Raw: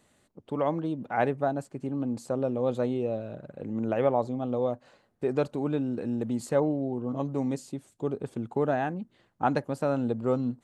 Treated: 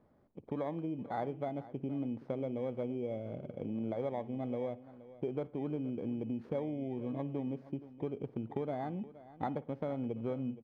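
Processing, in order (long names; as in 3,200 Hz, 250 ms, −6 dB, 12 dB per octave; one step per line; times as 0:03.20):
samples in bit-reversed order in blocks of 16 samples
low-pass filter 1,200 Hz 12 dB per octave
downward compressor 4 to 1, threshold −35 dBFS, peak gain reduction 13 dB
single-tap delay 471 ms −17 dB
on a send at −19.5 dB: convolution reverb, pre-delay 53 ms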